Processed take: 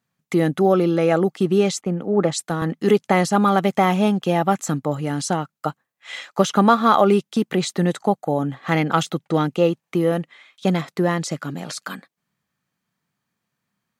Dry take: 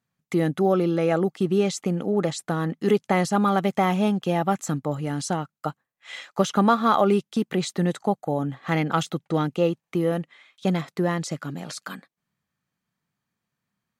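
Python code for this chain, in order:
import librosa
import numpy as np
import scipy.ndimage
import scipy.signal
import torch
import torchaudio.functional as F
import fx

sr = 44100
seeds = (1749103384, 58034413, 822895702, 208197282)

y = fx.low_shelf(x, sr, hz=66.0, db=-10.5)
y = fx.band_widen(y, sr, depth_pct=100, at=(1.81, 2.62))
y = y * librosa.db_to_amplitude(4.5)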